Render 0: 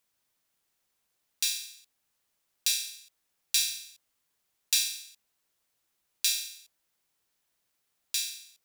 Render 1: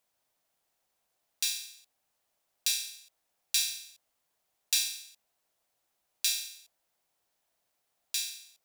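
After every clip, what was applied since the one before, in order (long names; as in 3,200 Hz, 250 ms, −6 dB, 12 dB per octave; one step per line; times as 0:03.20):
parametric band 690 Hz +9.5 dB 0.87 octaves
level −2 dB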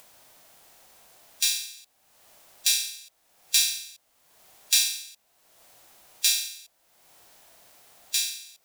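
harmonic and percussive parts rebalanced harmonic +5 dB
in parallel at +1 dB: upward compression, threshold −33 dBFS
on the sum: level −4 dB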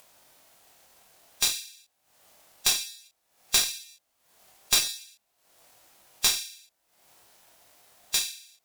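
chorus effect 0.51 Hz, delay 20 ms, depth 6.5 ms
asymmetric clip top −26.5 dBFS
transient designer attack +7 dB, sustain −4 dB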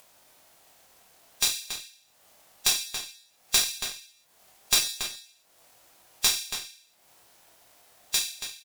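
slap from a distant wall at 48 metres, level −7 dB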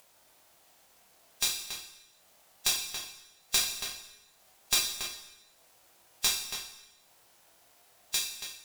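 dense smooth reverb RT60 1.2 s, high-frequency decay 0.85×, DRR 7 dB
level −4.5 dB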